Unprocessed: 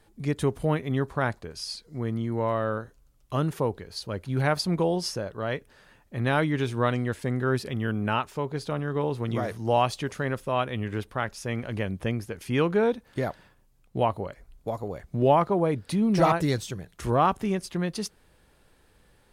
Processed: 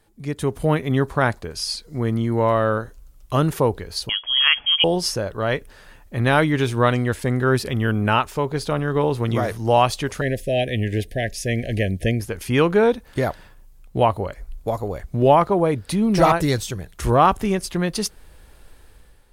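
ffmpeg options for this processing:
-filter_complex "[0:a]asettb=1/sr,asplit=3[a][b][c];[a]atrim=end=4.094[d];[b]atrim=start=4.09:end=4.84,asetpts=PTS-STARTPTS,afade=t=in:d=0.004:c=qsin,afade=t=out:st=0.746:d=0.004:c=qsin,lowpass=f=2.9k:t=q:w=0.5098,lowpass=f=2.9k:t=q:w=0.6013,lowpass=f=2.9k:t=q:w=0.9,lowpass=f=2.9k:t=q:w=2.563,afreqshift=-3400[e];[c]atrim=start=4.836[f];[d][e]acrossfade=d=0.004:c1=hsin:c2=qsin[g];[g][f]acrossfade=d=0.004:c1=qsin:c2=hsin,asettb=1/sr,asplit=3[h][i][j];[h]atrim=end=10.214[k];[i]atrim=start=10.21:end=12.21,asetpts=PTS-STARTPTS,afade=t=in:d=0.004:c=qsin,afade=t=out:st=1.996:d=0.004:c=qsin,asuperstop=centerf=1100:order=20:qfactor=1.2[l];[j]atrim=start=12.206[m];[k][l]acrossfade=d=0.004:c1=hsin:c2=qsin[n];[n][m]acrossfade=d=0.004:c1=qsin:c2=hsin,asubboost=boost=3:cutoff=75,dynaudnorm=f=220:g=5:m=9.5dB,highshelf=f=9.6k:g=6,volume=-1dB"

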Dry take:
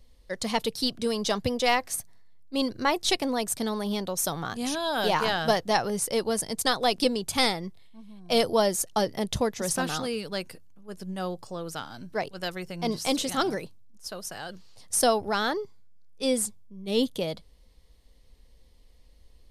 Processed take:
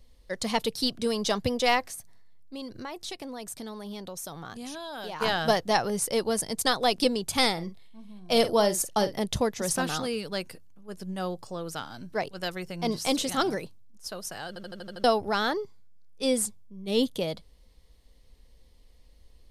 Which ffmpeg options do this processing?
-filter_complex "[0:a]asplit=3[a][b][c];[a]afade=t=out:st=1.87:d=0.02[d];[b]acompressor=threshold=-38dB:ratio=3:attack=3.2:release=140:knee=1:detection=peak,afade=t=in:st=1.87:d=0.02,afade=t=out:st=5.2:d=0.02[e];[c]afade=t=in:st=5.2:d=0.02[f];[d][e][f]amix=inputs=3:normalize=0,asettb=1/sr,asplit=3[g][h][i];[g]atrim=end=7.524[j];[h]atrim=start=7.52:end=9.22,asetpts=PTS-STARTPTS,afade=t=in:d=0.004:c=qsin,afade=t=out:st=1.696:d=0.004:c=qsin,asplit=2[k][l];[l]adelay=48,volume=-12dB[m];[k][m]amix=inputs=2:normalize=0,atrim=end_sample=74970[n];[i]atrim=start=9.216[o];[j][n]acrossfade=d=0.004:c1=hsin:c2=qsin[p];[p][o]acrossfade=d=0.004:c1=qsin:c2=hsin,asplit=8[q][r][s][t][u][v][w][x];[q]atrim=end=14.562[y];[r]atrim=start=14.478:end=14.562[z];[s]atrim=start=14.478:end=14.562[aa];[t]atrim=start=14.478:end=14.562[ab];[u]atrim=start=14.478:end=14.562[ac];[v]atrim=start=14.478:end=14.562[ad];[w]atrim=start=14.478:end=14.562[ae];[x]atrim=start=15.038[af];[y][z]acrossfade=d=0.004:c1=hsin:c2=hsin[ag];[ag][aa]acrossfade=d=0.004:c1=hsin:c2=hsin[ah];[ah][ab]acrossfade=d=0.004:c1=hsin:c2=hsin[ai];[ai][ac]acrossfade=d=0.004:c1=hsin:c2=hsin[aj];[aj][ad]acrossfade=d=0.004:c1=hsin:c2=hsin[ak];[ak][ae]acrossfade=d=0.004:c1=hsin:c2=hsin[al];[al][af]acrossfade=d=0.004:c1=hsin:c2=hsin"

